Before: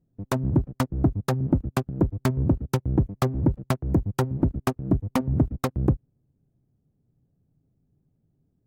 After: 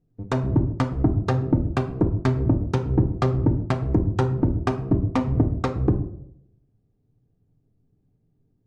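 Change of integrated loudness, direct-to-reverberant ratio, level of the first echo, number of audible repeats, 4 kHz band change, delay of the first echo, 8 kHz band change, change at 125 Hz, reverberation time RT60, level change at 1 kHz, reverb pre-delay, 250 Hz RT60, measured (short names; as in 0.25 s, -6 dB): +2.5 dB, 4.5 dB, none, none, -0.5 dB, none, n/a, +2.5 dB, 0.70 s, +2.5 dB, 3 ms, 0.75 s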